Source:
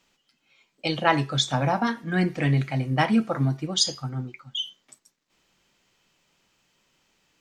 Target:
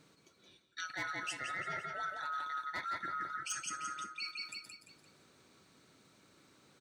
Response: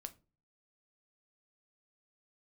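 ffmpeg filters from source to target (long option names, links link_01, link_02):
-filter_complex "[0:a]afftfilt=real='real(if(lt(b,960),b+48*(1-2*mod(floor(b/48),2)),b),0)':imag='imag(if(lt(b,960),b+48*(1-2*mod(floor(b/48),2)),b),0)':win_size=2048:overlap=0.75,highpass=100,aecho=1:1:187|374|561|748|935:0.501|0.19|0.0724|0.0275|0.0105,asetrate=48000,aresample=44100,acrossover=split=460[link_01][link_02];[link_01]acompressor=mode=upward:threshold=-53dB:ratio=2.5[link_03];[link_03][link_02]amix=inputs=2:normalize=0,asoftclip=type=hard:threshold=-13.5dB,areverse,acompressor=threshold=-40dB:ratio=4,areverse,volume=-1dB"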